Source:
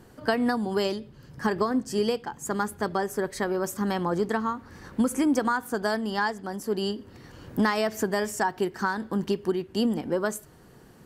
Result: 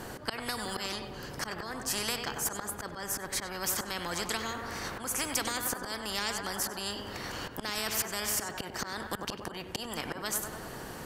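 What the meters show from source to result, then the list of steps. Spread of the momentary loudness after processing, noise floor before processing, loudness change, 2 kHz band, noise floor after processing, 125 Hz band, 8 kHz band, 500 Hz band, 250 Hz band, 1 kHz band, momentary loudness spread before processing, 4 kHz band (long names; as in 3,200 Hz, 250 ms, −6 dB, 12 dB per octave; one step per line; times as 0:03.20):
8 LU, −52 dBFS, −6.0 dB, −4.5 dB, −44 dBFS, −8.0 dB, +6.5 dB, −12.5 dB, −14.5 dB, −8.0 dB, 7 LU, +2.5 dB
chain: volume swells 308 ms
tape delay 96 ms, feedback 57%, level −12 dB, low-pass 2,700 Hz
every bin compressed towards the loudest bin 4 to 1
level −2 dB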